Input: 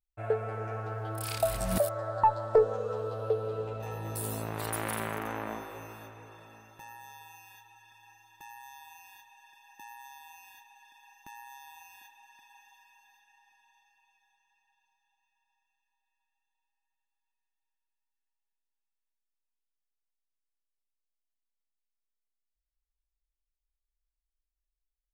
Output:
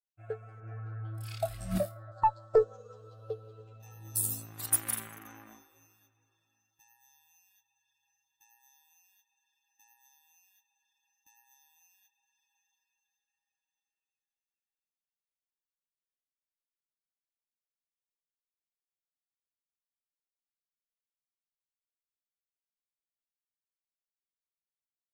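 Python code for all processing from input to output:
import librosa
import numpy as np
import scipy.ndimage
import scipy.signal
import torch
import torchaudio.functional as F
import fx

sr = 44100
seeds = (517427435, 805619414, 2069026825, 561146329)

y = fx.chain(x, sr, fx.bass_treble(bass_db=-3, treble_db=-14),
    fx.room_flutter(wall_m=4.6, rt60_s=0.34), at=(0.6, 2.12))
y = fx.bin_expand(y, sr, power=1.5)
y = fx.bass_treble(y, sr, bass_db=4, treble_db=15)
y = fx.upward_expand(y, sr, threshold_db=-50.0, expansion=1.5)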